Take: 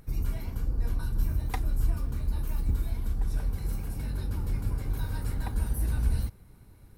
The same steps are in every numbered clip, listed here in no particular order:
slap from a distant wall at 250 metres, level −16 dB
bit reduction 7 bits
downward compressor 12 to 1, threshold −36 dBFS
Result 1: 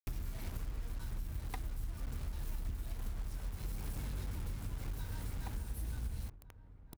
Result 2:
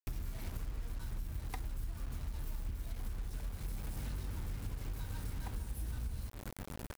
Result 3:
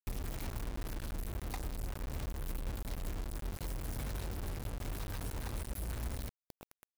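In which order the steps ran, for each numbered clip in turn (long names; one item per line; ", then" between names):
bit reduction, then downward compressor, then slap from a distant wall
slap from a distant wall, then bit reduction, then downward compressor
downward compressor, then slap from a distant wall, then bit reduction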